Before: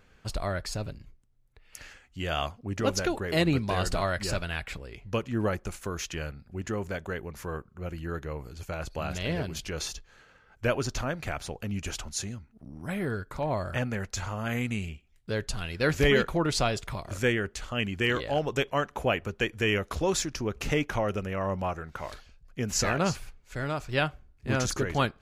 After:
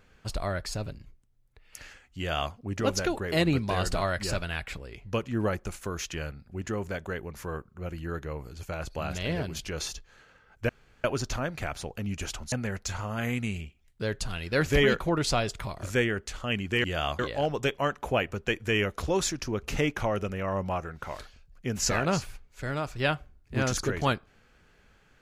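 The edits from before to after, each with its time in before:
2.18–2.53 s: copy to 18.12 s
10.69 s: insert room tone 0.35 s
12.17–13.80 s: delete

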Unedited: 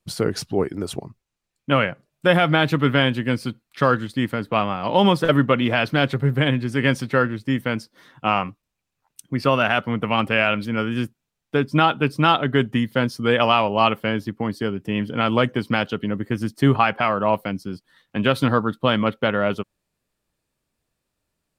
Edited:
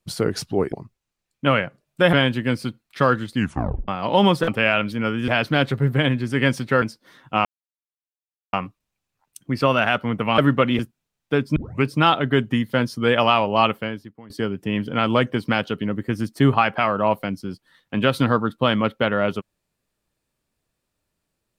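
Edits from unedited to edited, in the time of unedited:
0.72–0.97 s: delete
2.38–2.94 s: delete
4.16 s: tape stop 0.53 s
5.29–5.70 s: swap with 10.21–11.01 s
7.24–7.73 s: delete
8.36 s: insert silence 1.08 s
11.78 s: tape start 0.28 s
13.93–14.52 s: fade out quadratic, to -20 dB

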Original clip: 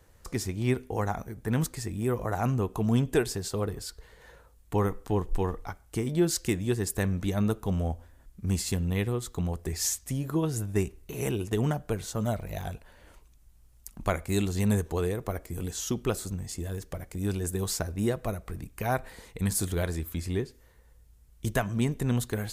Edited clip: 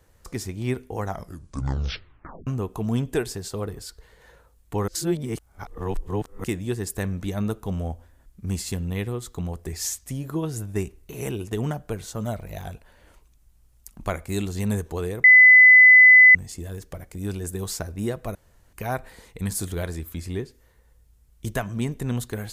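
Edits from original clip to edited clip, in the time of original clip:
1.04 s: tape stop 1.43 s
4.88–6.44 s: reverse
15.24–16.35 s: bleep 2.01 kHz -7.5 dBFS
18.35–18.73 s: room tone

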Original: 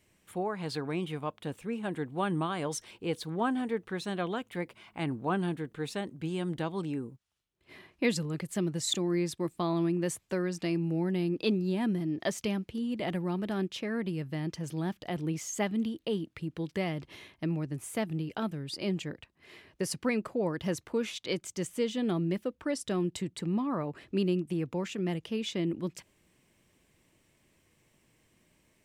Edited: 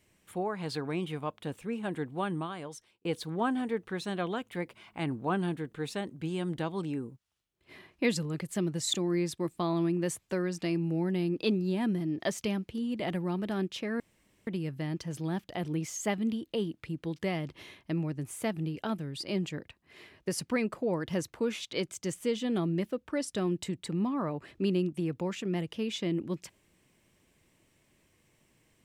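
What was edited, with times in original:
2.04–3.05 s: fade out
14.00 s: insert room tone 0.47 s

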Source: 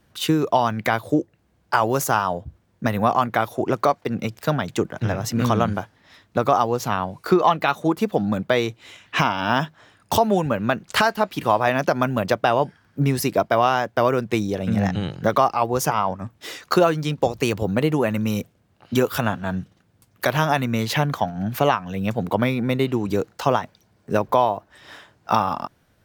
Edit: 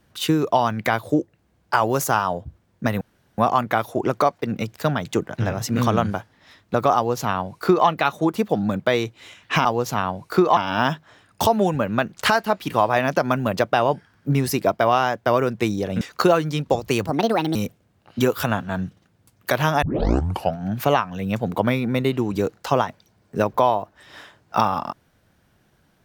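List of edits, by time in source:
3.01 s: insert room tone 0.37 s
6.59–7.51 s: copy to 9.28 s
14.72–16.53 s: delete
17.59–18.30 s: speed 147%
20.57 s: tape start 0.75 s

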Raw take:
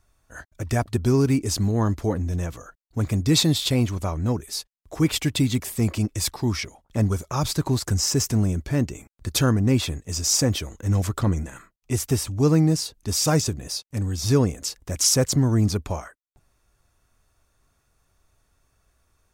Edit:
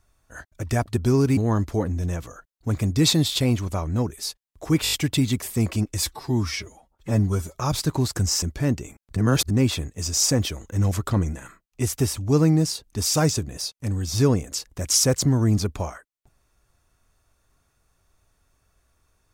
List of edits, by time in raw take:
1.37–1.67 s: delete
5.14 s: stutter 0.02 s, 5 plays
6.26–7.27 s: stretch 1.5×
8.14–8.53 s: delete
9.27–9.61 s: reverse

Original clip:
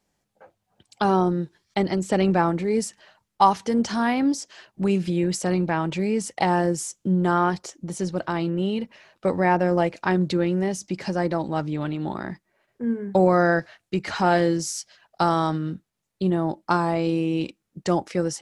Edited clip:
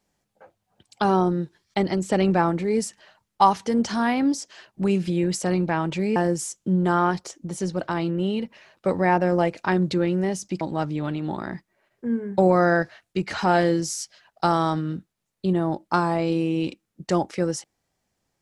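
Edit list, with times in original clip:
6.16–6.55 s: delete
11.00–11.38 s: delete

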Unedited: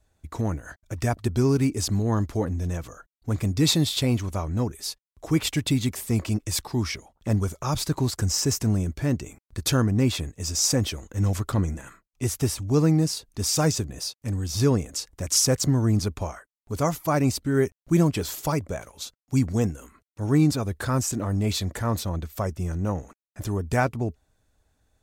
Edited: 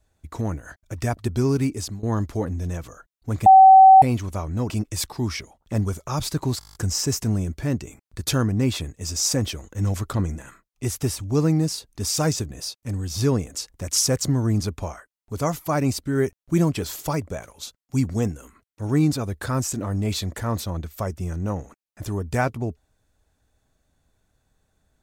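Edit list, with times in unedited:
1.56–2.03 s: fade out equal-power, to -19.5 dB
3.46–4.02 s: bleep 765 Hz -6 dBFS
4.70–6.25 s: delete
8.14 s: stutter 0.02 s, 9 plays

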